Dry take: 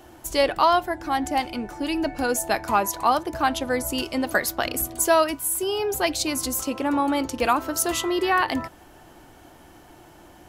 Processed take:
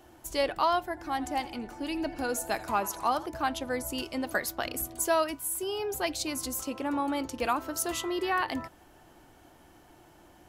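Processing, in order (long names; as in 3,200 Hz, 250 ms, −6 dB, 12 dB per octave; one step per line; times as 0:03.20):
0:00.88–0:03.26: feedback echo with a swinging delay time 83 ms, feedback 60%, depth 105 cents, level −18 dB
level −7.5 dB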